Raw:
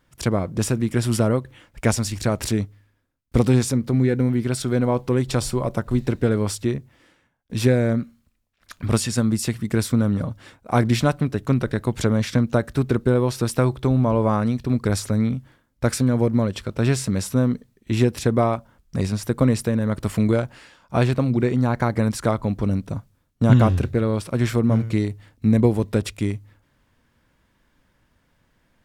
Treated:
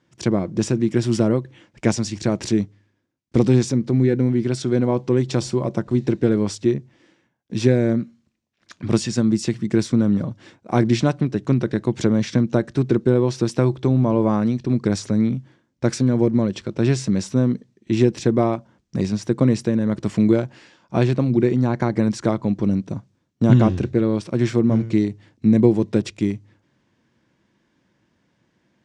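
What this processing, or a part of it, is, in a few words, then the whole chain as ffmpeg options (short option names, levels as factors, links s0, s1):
car door speaker: -af "highpass=110,equalizer=f=130:t=q:w=4:g=4,equalizer=f=200:t=q:w=4:g=6,equalizer=f=340:t=q:w=4:g=9,equalizer=f=1300:t=q:w=4:g=-4,equalizer=f=5900:t=q:w=4:g=3,lowpass=f=7400:w=0.5412,lowpass=f=7400:w=1.3066,volume=0.841"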